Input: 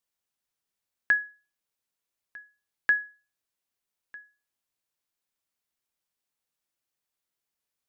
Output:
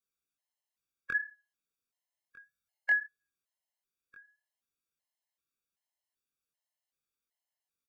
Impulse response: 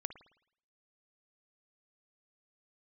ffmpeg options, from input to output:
-filter_complex "[0:a]asplit=3[link_01][link_02][link_03];[link_01]afade=type=out:start_time=2.38:duration=0.02[link_04];[link_02]aecho=1:1:1.4:0.87,afade=type=in:start_time=2.38:duration=0.02,afade=type=out:start_time=3.05:duration=0.02[link_05];[link_03]afade=type=in:start_time=3.05:duration=0.02[link_06];[link_04][link_05][link_06]amix=inputs=3:normalize=0,flanger=delay=20:depth=3.3:speed=2.2,afftfilt=real='re*gt(sin(2*PI*1.3*pts/sr)*(1-2*mod(floor(b*sr/1024/550),2)),0)':imag='im*gt(sin(2*PI*1.3*pts/sr)*(1-2*mod(floor(b*sr/1024/550),2)),0)':win_size=1024:overlap=0.75"

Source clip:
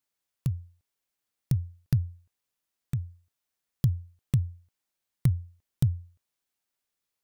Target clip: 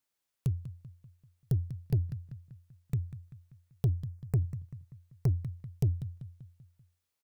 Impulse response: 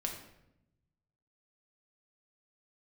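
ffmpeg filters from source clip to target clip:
-filter_complex "[0:a]asettb=1/sr,asplit=3[link_01][link_02][link_03];[link_01]atrim=end=3.874[link_04];[link_02]atrim=start=3.87:end=4.45,asetpts=PTS-STARTPTS,afade=type=in:duration=0.004:curve=qsin,afade=type=out:start_time=0.576:duration=0.004:curve=qsin,asuperstop=centerf=3300:order=4:qfactor=1.3[link_05];[link_03]atrim=start=4.446[link_06];[link_04][link_05]acrossfade=duration=0.004:curve1=hsin:curve2=qsin[link_07];[link_07][link_06]acrossfade=duration=0.004:curve1=qsin:curve2=hsin,asplit=2[link_08][link_09];[link_09]adelay=194,lowpass=frequency=3300:poles=1,volume=-15dB,asplit=2[link_10][link_11];[link_11]adelay=194,lowpass=frequency=3300:poles=1,volume=0.49,asplit=2[link_12][link_13];[link_13]adelay=194,lowpass=frequency=3300:poles=1,volume=0.49,asplit=2[link_14][link_15];[link_15]adelay=194,lowpass=frequency=3300:poles=1,volume=0.49,asplit=2[link_16][link_17];[link_17]adelay=194,lowpass=frequency=3300:poles=1,volume=0.49[link_18];[link_08][link_10][link_12][link_14][link_16][link_18]amix=inputs=6:normalize=0,asoftclip=type=tanh:threshold=-20.5dB"

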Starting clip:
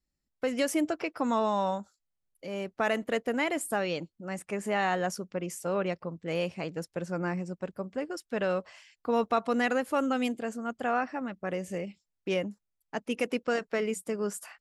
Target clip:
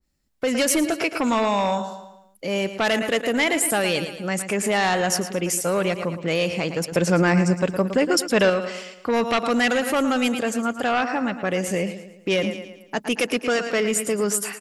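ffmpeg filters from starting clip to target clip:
ffmpeg -i in.wav -filter_complex "[0:a]aecho=1:1:112|224|336|448|560:0.224|0.105|0.0495|0.0232|0.0109,aeval=exprs='0.2*sin(PI/2*2*val(0)/0.2)':channel_layout=same,alimiter=limit=-17.5dB:level=0:latency=1:release=78,asettb=1/sr,asplit=3[link_01][link_02][link_03];[link_01]atrim=end=6.924[link_04];[link_02]atrim=start=6.92:end=8.5,asetpts=PTS-STARTPTS,afade=type=in:duration=0.004:curve=qsin,afade=type=out:start_time=1.576:duration=0.004:curve=qsin,acontrast=29[link_05];[link_03]atrim=start=8.496[link_06];[link_04][link_05]acrossfade=duration=0.004:curve1=hsin:curve2=qsin[link_07];[link_07][link_06]acrossfade=duration=0.004:curve1=qsin:curve2=hsin,adynamicequalizer=threshold=0.01:dfrequency=1800:dqfactor=0.7:tfrequency=1800:tqfactor=0.7:attack=5:release=100:ratio=0.375:range=3:mode=boostabove:tftype=highshelf,volume=1.5dB" out.wav

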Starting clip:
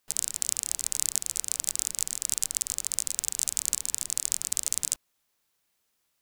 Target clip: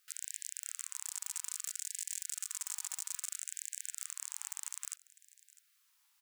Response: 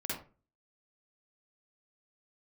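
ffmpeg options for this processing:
-filter_complex "[0:a]asplit=3[link_01][link_02][link_03];[link_01]afade=type=out:start_time=1.04:duration=0.02[link_04];[link_02]aecho=1:1:4.1:0.55,afade=type=in:start_time=1.04:duration=0.02,afade=type=out:start_time=3.35:duration=0.02[link_05];[link_03]afade=type=in:start_time=3.35:duration=0.02[link_06];[link_04][link_05][link_06]amix=inputs=3:normalize=0,acompressor=threshold=-29dB:ratio=6,alimiter=limit=-17dB:level=0:latency=1:release=72,aeval=exprs='0.075*(abs(mod(val(0)/0.075+3,4)-2)-1)':channel_layout=same,aecho=1:1:652:0.0944,afftfilt=real='re*gte(b*sr/1024,780*pow(1600/780,0.5+0.5*sin(2*PI*0.61*pts/sr)))':imag='im*gte(b*sr/1024,780*pow(1600/780,0.5+0.5*sin(2*PI*0.61*pts/sr)))':win_size=1024:overlap=0.75,volume=3dB"

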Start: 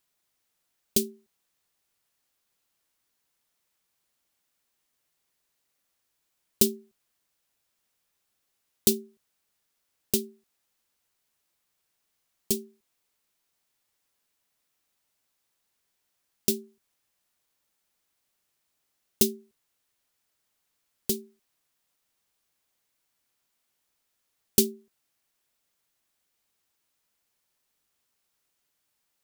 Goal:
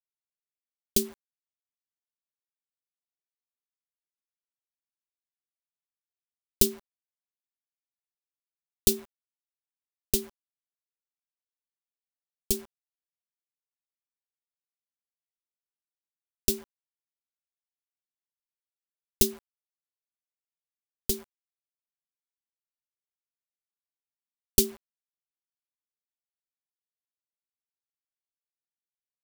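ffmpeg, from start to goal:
ffmpeg -i in.wav -af "asubboost=boost=8:cutoff=63,acrusher=bits=7:mix=0:aa=0.000001" out.wav

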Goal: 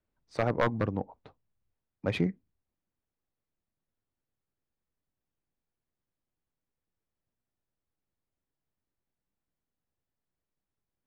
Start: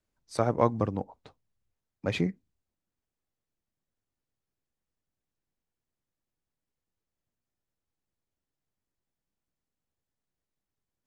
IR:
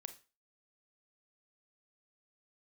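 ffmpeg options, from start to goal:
-af "aeval=exprs='0.168*(abs(mod(val(0)/0.168+3,4)-2)-1)':channel_layout=same,adynamicsmooth=sensitivity=3:basefreq=3300"

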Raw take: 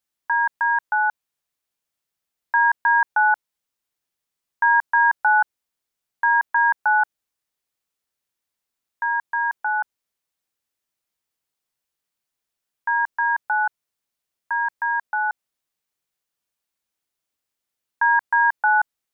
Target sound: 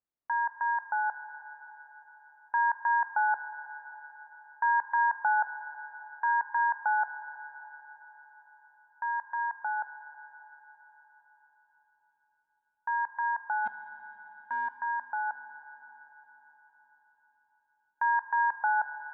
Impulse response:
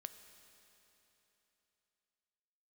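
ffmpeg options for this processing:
-filter_complex "[0:a]asplit=3[link_01][link_02][link_03];[link_01]afade=type=out:start_time=13.65:duration=0.02[link_04];[link_02]volume=17.5dB,asoftclip=hard,volume=-17.5dB,afade=type=in:start_time=13.65:duration=0.02,afade=type=out:start_time=14.8:duration=0.02[link_05];[link_03]afade=type=in:start_time=14.8:duration=0.02[link_06];[link_04][link_05][link_06]amix=inputs=3:normalize=0,lowpass=1200[link_07];[1:a]atrim=start_sample=2205,asetrate=31311,aresample=44100[link_08];[link_07][link_08]afir=irnorm=-1:irlink=0,volume=-2dB"

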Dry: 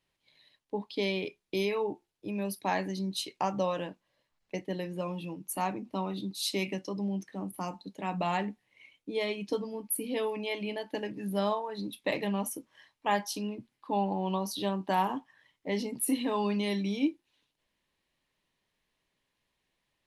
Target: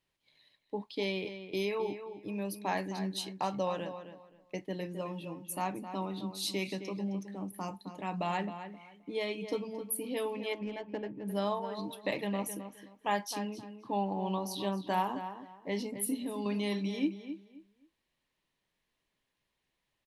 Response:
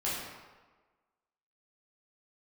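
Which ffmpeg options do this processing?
-filter_complex "[0:a]asettb=1/sr,asplit=3[link_01][link_02][link_03];[link_01]atrim=end=10.534[link_04];[link_02]atrim=start=10.53:end=11.28,asetpts=PTS-STARTPTS,afade=type=in:duration=0.004:curve=qsin,afade=type=out:start_time=0.746:duration=0.004:curve=qsin,adynamicsmooth=sensitivity=2.5:basefreq=1100[link_05];[link_03]atrim=start=11.276[link_06];[link_04][link_05]acrossfade=duration=0.004:curve1=hsin:curve2=qsin[link_07];[link_07][link_06]acrossfade=duration=0.004:curve1=qsin:curve2=hsin,asettb=1/sr,asplit=3[link_08][link_09][link_10];[link_08]atrim=end=16.054[link_11];[link_09]atrim=start=16.05:end=16.46,asetpts=PTS-STARTPTS,afade=type=in:duration=0.004:curve=qsin,afade=type=out:start_time=0.406:duration=0.004:curve=qsin,equalizer=frequency=1400:width=0.43:gain=-12[link_12];[link_10]atrim=start=16.456[link_13];[link_11][link_12]acrossfade=duration=0.004:curve1=hsin:curve2=qsin[link_14];[link_14][link_13]acrossfade=duration=0.004:curve1=qsin:curve2=hsin,asplit=2[link_15][link_16];[link_16]adelay=263,lowpass=frequency=3300:poles=1,volume=-10dB,asplit=2[link_17][link_18];[link_18]adelay=263,lowpass=frequency=3300:poles=1,volume=0.24,asplit=2[link_19][link_20];[link_20]adelay=263,lowpass=frequency=3300:poles=1,volume=0.24[link_21];[link_15][link_17][link_19][link_21]amix=inputs=4:normalize=0,volume=-3dB"

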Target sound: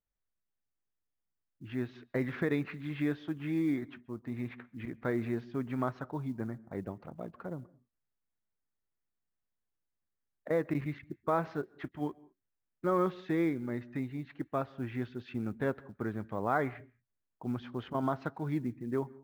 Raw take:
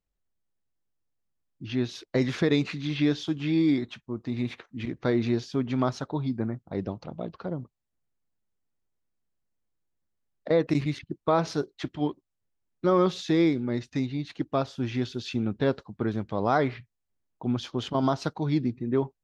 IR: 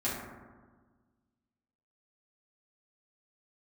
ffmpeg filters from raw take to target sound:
-filter_complex "[0:a]lowpass=frequency=1800:width_type=q:width=1.7,acrusher=bits=9:mode=log:mix=0:aa=0.000001,asplit=2[link_01][link_02];[1:a]atrim=start_sample=2205,atrim=end_sample=4410,adelay=127[link_03];[link_02][link_03]afir=irnorm=-1:irlink=0,volume=-29.5dB[link_04];[link_01][link_04]amix=inputs=2:normalize=0,volume=-8dB"

